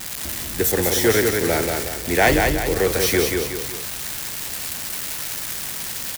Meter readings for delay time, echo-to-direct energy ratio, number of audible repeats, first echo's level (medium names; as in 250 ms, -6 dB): 184 ms, -3.0 dB, 3, -4.0 dB